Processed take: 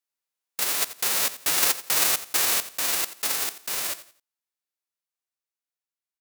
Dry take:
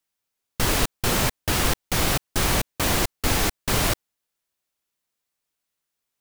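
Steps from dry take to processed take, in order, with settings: spectral whitening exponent 0.1; Doppler pass-by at 1.9, 5 m/s, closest 4.6 m; HPF 370 Hz 6 dB/oct; notch 3200 Hz, Q 30; on a send: feedback echo 87 ms, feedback 29%, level -15 dB

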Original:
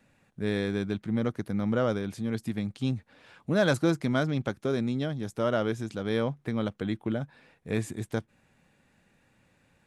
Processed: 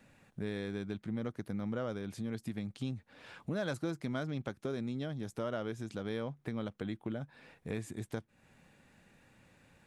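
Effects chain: compressor 2.5:1, threshold -42 dBFS, peak gain reduction 15 dB; gain +2 dB

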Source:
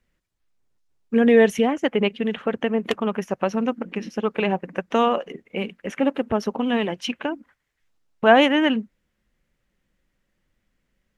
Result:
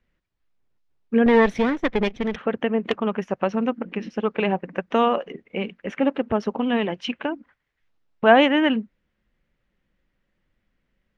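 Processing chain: 1.26–2.36 minimum comb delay 0.53 ms; LPF 3900 Hz 12 dB/oct

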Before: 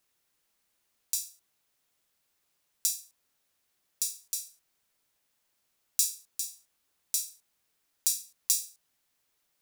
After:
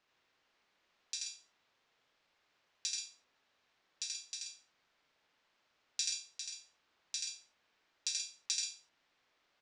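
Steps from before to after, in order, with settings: Gaussian blur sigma 2 samples; low shelf 270 Hz -10 dB; on a send: loudspeakers at several distances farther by 28 m -2 dB, 45 m -7 dB; on the sum: gain +5.5 dB

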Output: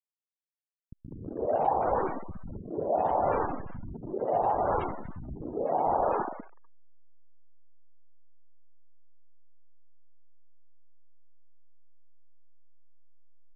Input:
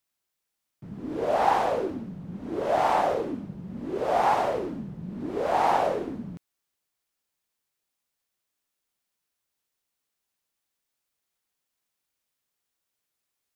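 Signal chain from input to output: level-crossing sampler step -27.5 dBFS; spectral gate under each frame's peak -20 dB strong; three bands offset in time lows, mids, highs 0.2/0.45 s, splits 220/940 Hz; low-pass opened by the level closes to 350 Hz, open at -23.5 dBFS

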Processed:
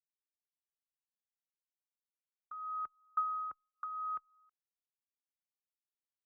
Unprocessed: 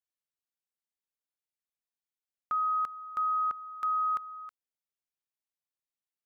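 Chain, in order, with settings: compressor 12:1, threshold -38 dBFS, peak gain reduction 11 dB; gate -39 dBFS, range -35 dB; LPF 1500 Hz 12 dB/oct; endless flanger 3 ms +0.78 Hz; gain +12 dB

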